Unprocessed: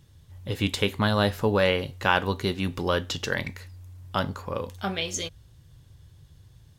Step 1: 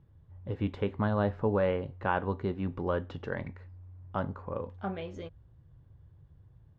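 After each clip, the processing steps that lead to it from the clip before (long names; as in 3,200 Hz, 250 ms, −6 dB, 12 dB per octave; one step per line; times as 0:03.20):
low-pass filter 1,200 Hz 12 dB per octave
level −4.5 dB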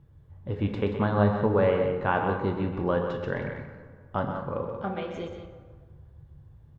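double-tracking delay 29 ms −14 dB
loudspeakers that aren't time-aligned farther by 43 metres −9 dB, 62 metres −10 dB
dense smooth reverb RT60 1.7 s, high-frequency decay 0.55×, pre-delay 0 ms, DRR 6.5 dB
level +3.5 dB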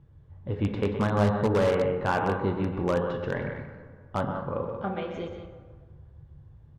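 in parallel at −11 dB: wrap-around overflow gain 17 dB
on the sum: high-frequency loss of the air 64 metres
level −1.5 dB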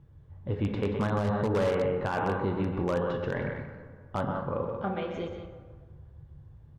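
brickwall limiter −20 dBFS, peak gain reduction 9.5 dB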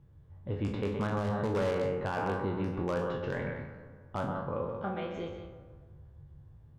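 peak hold with a decay on every bin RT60 0.40 s
level −4.5 dB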